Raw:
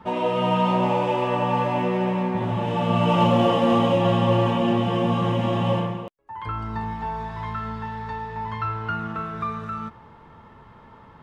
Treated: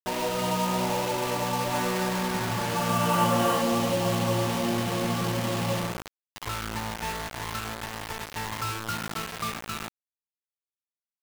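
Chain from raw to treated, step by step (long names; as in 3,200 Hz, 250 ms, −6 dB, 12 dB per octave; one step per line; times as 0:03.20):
0:01.73–0:03.62: parametric band 1,500 Hz +12.5 dB 0.84 octaves
in parallel at 0 dB: downward compressor 8 to 1, threshold −33 dBFS, peak gain reduction 20.5 dB
on the sum: bit reduction 4 bits
level −8 dB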